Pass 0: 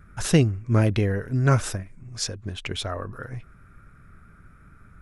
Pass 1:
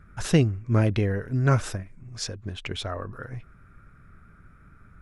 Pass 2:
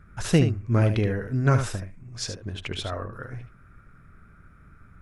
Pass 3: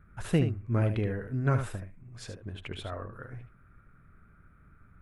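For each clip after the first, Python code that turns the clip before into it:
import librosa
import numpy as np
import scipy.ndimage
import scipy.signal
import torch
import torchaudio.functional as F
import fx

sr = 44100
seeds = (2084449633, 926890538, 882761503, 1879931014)

y1 = fx.high_shelf(x, sr, hz=8100.0, db=-8.5)
y1 = y1 * librosa.db_to_amplitude(-1.5)
y2 = y1 + 10.0 ** (-8.5 / 20.0) * np.pad(y1, (int(75 * sr / 1000.0), 0))[:len(y1)]
y3 = fx.peak_eq(y2, sr, hz=5600.0, db=-12.0, octaves=0.95)
y3 = y3 * librosa.db_to_amplitude(-6.0)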